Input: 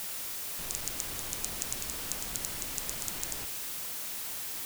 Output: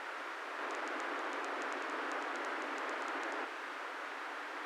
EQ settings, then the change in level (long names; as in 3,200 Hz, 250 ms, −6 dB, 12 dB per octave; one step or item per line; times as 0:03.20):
linear-phase brick-wall high-pass 260 Hz
low-pass with resonance 1,500 Hz, resonance Q 1.7
+5.5 dB